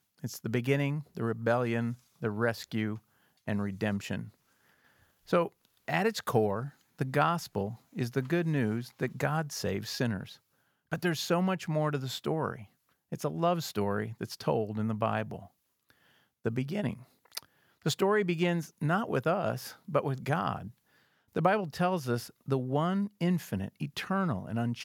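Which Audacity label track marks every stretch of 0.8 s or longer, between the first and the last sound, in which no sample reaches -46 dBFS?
4.290000	5.280000	silence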